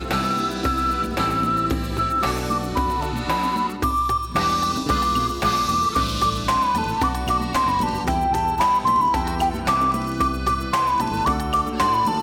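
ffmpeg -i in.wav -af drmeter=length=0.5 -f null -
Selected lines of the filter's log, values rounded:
Channel 1: DR: 8.9
Overall DR: 8.9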